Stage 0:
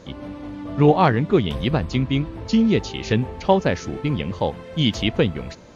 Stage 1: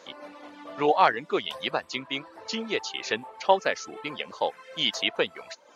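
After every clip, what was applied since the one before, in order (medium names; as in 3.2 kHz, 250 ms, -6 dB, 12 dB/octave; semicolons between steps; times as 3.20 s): reverb removal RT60 0.59 s; high-pass 630 Hz 12 dB/octave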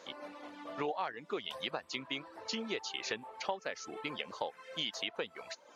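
compression 6:1, threshold -30 dBFS, peak gain reduction 15.5 dB; trim -3.5 dB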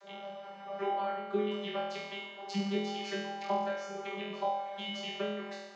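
vocoder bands 32, saw 198 Hz; flutter echo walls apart 4.1 m, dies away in 1.1 s; trim +2.5 dB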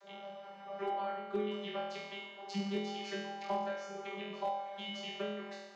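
hard clipper -24 dBFS, distortion -28 dB; trim -3.5 dB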